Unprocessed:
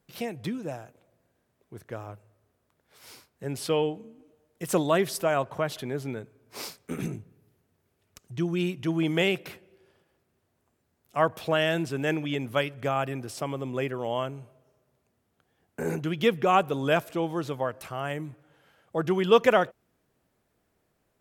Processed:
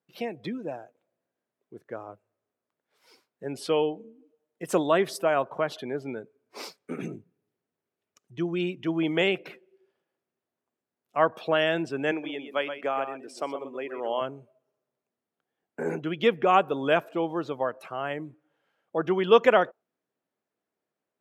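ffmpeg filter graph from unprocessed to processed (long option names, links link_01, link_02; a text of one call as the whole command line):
ffmpeg -i in.wav -filter_complex "[0:a]asettb=1/sr,asplit=3[link_01][link_02][link_03];[link_01]atrim=end=12.114[link_04];[link_02]atrim=start=12.11:end=14.21,asetpts=PTS-STARTPTS,afade=type=in:duration=0.004:curve=qsin,afade=type=out:start_time=2.096:duration=0.004:curve=qsin,highpass=270,tremolo=f=1.5:d=0.47,aecho=1:1:126:0.376,atrim=end_sample=92610[link_05];[link_03]atrim=start=14.206[link_06];[link_04][link_05]acrossfade=duration=0.004:curve1=hsin:curve2=qsin[link_07];[link_07][link_06]acrossfade=duration=0.004:curve1=qsin:curve2=hsin,highpass=230,afftdn=noise_reduction=13:noise_floor=-46,highshelf=frequency=6600:gain=-9,volume=1.5dB" out.wav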